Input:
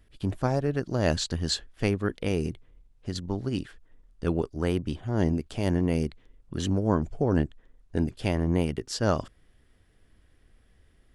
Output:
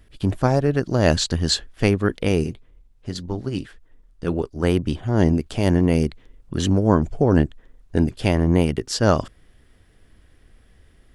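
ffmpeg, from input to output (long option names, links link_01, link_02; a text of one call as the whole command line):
ffmpeg -i in.wav -filter_complex "[0:a]asplit=3[link_01][link_02][link_03];[link_01]afade=type=out:start_time=2.43:duration=0.02[link_04];[link_02]flanger=delay=1.8:depth=6.2:regen=-64:speed=1.8:shape=triangular,afade=type=in:start_time=2.43:duration=0.02,afade=type=out:start_time=4.62:duration=0.02[link_05];[link_03]afade=type=in:start_time=4.62:duration=0.02[link_06];[link_04][link_05][link_06]amix=inputs=3:normalize=0,volume=7.5dB" out.wav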